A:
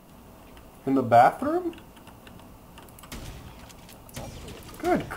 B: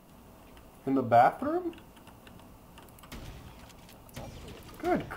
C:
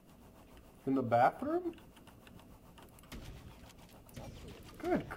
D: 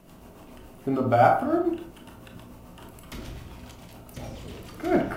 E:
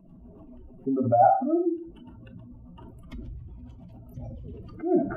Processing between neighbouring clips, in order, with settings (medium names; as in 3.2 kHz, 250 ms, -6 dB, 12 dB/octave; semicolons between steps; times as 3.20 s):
dynamic bell 8.6 kHz, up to -6 dB, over -54 dBFS, Q 0.78; trim -4.5 dB
rotary cabinet horn 7 Hz; trim -3 dB
reverberation RT60 0.50 s, pre-delay 17 ms, DRR 2.5 dB; trim +8.5 dB
spectral contrast enhancement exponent 2.3